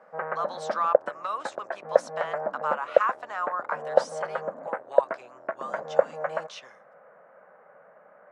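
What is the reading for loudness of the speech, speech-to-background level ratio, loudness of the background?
−33.5 LKFS, −4.5 dB, −29.0 LKFS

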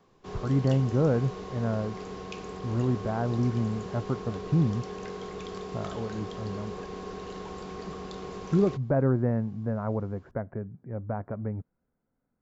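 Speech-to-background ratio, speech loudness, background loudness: 10.0 dB, −29.5 LKFS, −39.5 LKFS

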